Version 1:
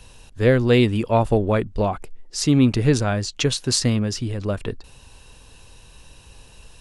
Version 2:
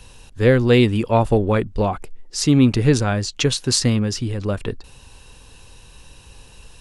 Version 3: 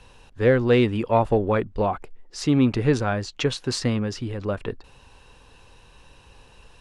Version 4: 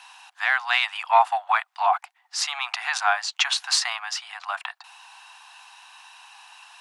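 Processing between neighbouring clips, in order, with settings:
band-stop 640 Hz, Q 12; trim +2 dB
overdrive pedal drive 7 dB, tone 1.3 kHz, clips at -1 dBFS; trim -1.5 dB
steep high-pass 720 Hz 96 dB/octave; trim +8 dB

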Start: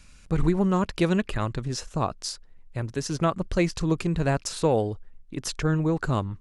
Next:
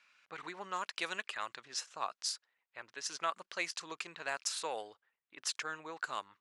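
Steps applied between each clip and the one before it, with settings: high-pass 1.2 kHz 12 dB/octave; level-controlled noise filter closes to 2.5 kHz, open at -29.5 dBFS; trim -3.5 dB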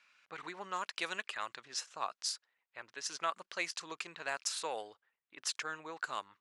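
no audible change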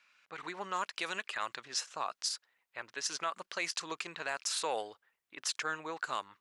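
peak limiter -28 dBFS, peak gain reduction 8.5 dB; level rider gain up to 5 dB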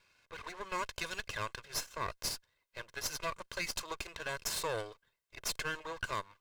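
comb filter that takes the minimum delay 1.9 ms

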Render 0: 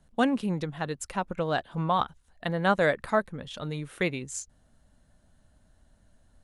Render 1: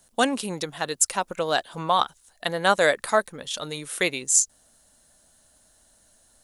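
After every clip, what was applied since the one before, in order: tone controls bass -13 dB, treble +15 dB; trim +4.5 dB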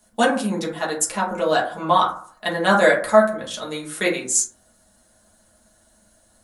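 reverberation RT60 0.50 s, pre-delay 5 ms, DRR -5.5 dB; trim -3 dB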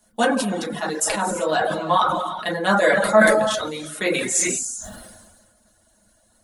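gated-style reverb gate 420 ms flat, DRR 7.5 dB; reverb removal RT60 0.53 s; decay stretcher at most 36 dB/s; trim -2 dB

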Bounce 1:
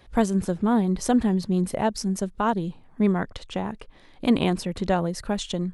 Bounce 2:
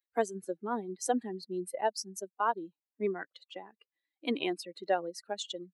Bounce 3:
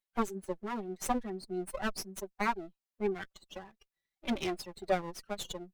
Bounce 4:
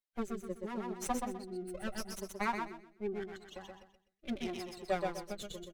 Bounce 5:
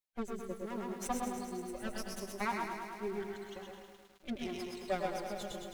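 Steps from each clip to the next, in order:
expander on every frequency bin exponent 2; high-pass 310 Hz 24 dB/octave; trim -2 dB
comb filter that takes the minimum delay 5.2 ms
feedback delay 126 ms, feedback 33%, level -4 dB; rotary cabinet horn 0.75 Hz; trim -2.5 dB
bit-crushed delay 106 ms, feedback 80%, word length 10-bit, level -7 dB; trim -1.5 dB

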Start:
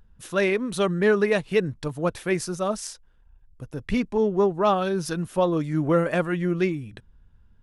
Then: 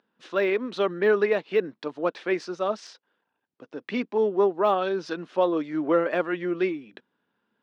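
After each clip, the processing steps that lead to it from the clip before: low-pass 4.6 kHz 24 dB/octave; de-esser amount 100%; high-pass 260 Hz 24 dB/octave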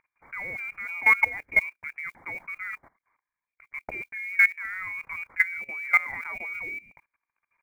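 frequency inversion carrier 2.6 kHz; modulation noise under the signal 30 dB; level held to a coarse grid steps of 19 dB; trim +3.5 dB

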